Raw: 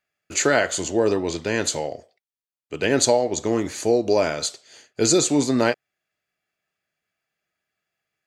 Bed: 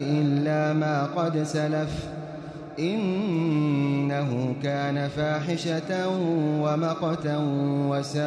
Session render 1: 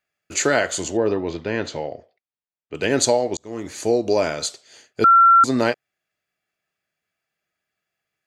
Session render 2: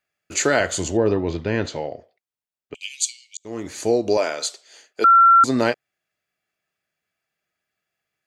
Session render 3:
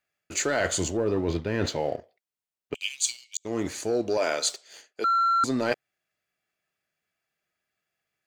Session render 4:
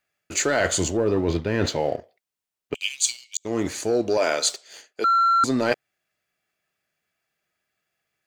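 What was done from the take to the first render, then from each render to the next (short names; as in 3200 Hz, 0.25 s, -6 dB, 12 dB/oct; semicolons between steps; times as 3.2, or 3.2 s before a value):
0.97–2.75 air absorption 220 m; 3.37–3.87 fade in; 5.04–5.44 bleep 1360 Hz -8.5 dBFS
0.6–1.66 low shelf 130 Hz +12 dB; 2.74–3.45 rippled Chebyshev high-pass 2200 Hz, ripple 6 dB; 4.17–5.19 HPF 390 Hz
sample leveller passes 1; reverse; compressor 6:1, threshold -23 dBFS, peak gain reduction 12.5 dB; reverse
gain +4 dB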